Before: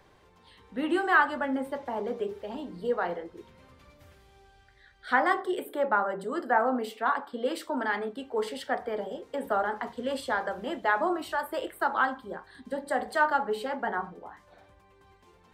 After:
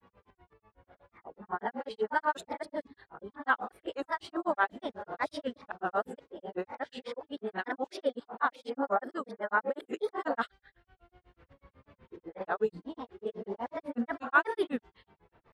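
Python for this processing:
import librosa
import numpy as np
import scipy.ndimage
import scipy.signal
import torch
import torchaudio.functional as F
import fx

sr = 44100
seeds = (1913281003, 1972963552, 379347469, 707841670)

y = x[::-1].copy()
y = fx.granulator(y, sr, seeds[0], grain_ms=109.0, per_s=8.1, spray_ms=12.0, spread_st=3)
y = fx.env_lowpass(y, sr, base_hz=2300.0, full_db=-26.5)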